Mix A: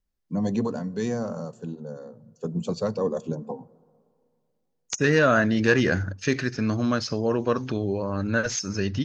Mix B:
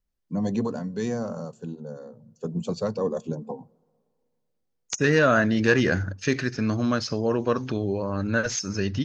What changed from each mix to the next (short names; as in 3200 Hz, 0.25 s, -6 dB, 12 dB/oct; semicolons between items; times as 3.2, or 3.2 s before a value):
first voice: send -8.0 dB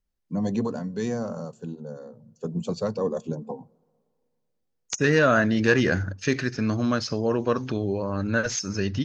none